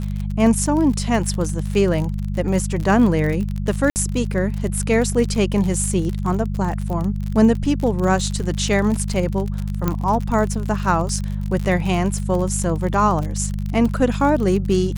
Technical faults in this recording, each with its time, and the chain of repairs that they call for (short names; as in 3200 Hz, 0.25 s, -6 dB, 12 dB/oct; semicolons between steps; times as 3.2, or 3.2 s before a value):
crackle 50/s -24 dBFS
hum 50 Hz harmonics 4 -24 dBFS
3.9–3.96 gap 59 ms
9.88 pop -7 dBFS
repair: de-click; de-hum 50 Hz, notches 4; interpolate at 3.9, 59 ms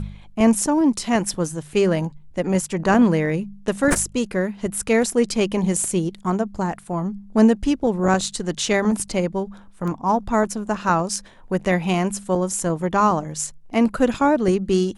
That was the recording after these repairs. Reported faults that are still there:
9.88 pop